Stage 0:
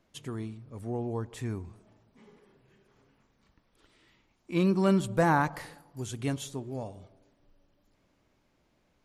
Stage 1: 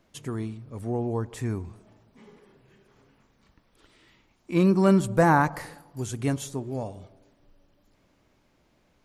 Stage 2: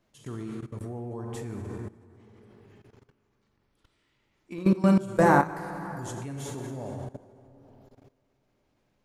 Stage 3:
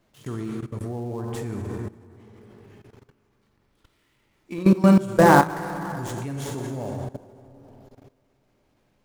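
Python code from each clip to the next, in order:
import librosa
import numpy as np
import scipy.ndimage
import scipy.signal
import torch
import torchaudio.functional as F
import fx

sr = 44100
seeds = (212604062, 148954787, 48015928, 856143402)

y1 = fx.dynamic_eq(x, sr, hz=3300.0, q=1.7, threshold_db=-56.0, ratio=4.0, max_db=-6)
y1 = y1 * librosa.db_to_amplitude(5.0)
y2 = fx.rev_plate(y1, sr, seeds[0], rt60_s=2.9, hf_ratio=0.55, predelay_ms=0, drr_db=2.0)
y2 = fx.level_steps(y2, sr, step_db=18)
y3 = fx.dead_time(y2, sr, dead_ms=0.072)
y3 = y3 * librosa.db_to_amplitude(5.5)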